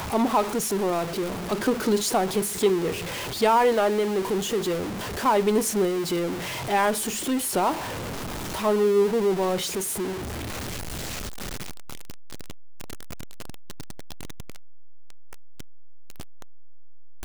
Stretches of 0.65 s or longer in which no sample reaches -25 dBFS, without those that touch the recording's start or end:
7.73–8.55

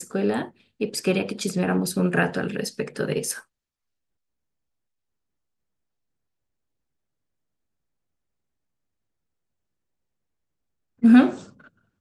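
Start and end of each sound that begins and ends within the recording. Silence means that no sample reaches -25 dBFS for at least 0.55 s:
11.04–11.33

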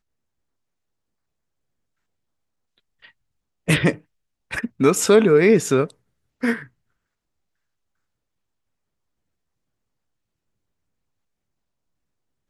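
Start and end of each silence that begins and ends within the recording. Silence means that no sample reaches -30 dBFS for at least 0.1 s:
3.95–4.51
4.66–4.8
5.9–6.43

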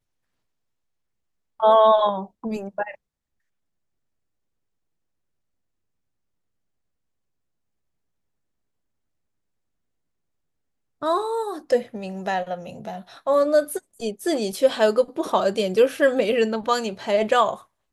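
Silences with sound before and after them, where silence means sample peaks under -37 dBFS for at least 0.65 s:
2.95–11.02

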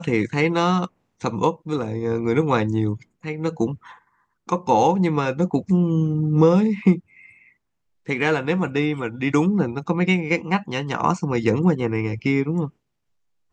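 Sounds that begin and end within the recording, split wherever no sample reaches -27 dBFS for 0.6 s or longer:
4.49–6.98
8.09–12.67

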